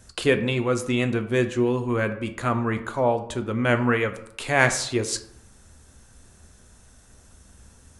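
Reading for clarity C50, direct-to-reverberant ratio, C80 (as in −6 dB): 12.5 dB, 8.0 dB, 15.0 dB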